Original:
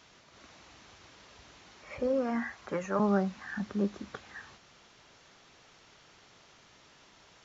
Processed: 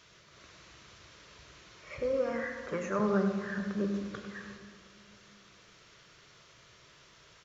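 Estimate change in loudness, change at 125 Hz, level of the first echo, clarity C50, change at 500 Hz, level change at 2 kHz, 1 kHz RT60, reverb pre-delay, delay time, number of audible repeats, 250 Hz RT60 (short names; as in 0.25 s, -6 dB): -1.0 dB, 0.0 dB, -9.5 dB, 5.5 dB, +0.5 dB, +1.0 dB, 2.2 s, 17 ms, 99 ms, 1, 2.8 s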